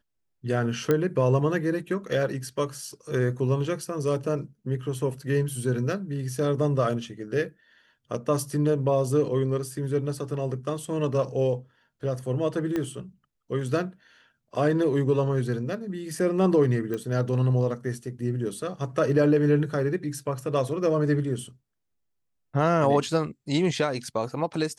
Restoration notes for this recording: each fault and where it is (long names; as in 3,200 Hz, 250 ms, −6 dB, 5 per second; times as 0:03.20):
0:00.91: click −11 dBFS
0:12.76: click −16 dBFS
0:16.94: click −20 dBFS